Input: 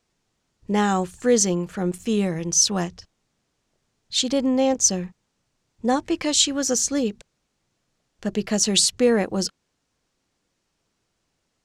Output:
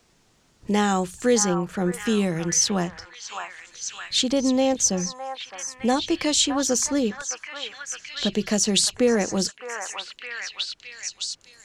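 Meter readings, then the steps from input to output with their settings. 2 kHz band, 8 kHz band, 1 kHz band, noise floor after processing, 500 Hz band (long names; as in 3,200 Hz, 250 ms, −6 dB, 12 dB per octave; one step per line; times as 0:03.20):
+3.0 dB, −1.5 dB, +0.5 dB, −62 dBFS, −1.0 dB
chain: echo through a band-pass that steps 612 ms, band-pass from 1,200 Hz, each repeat 0.7 octaves, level −3.5 dB
multiband upward and downward compressor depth 40%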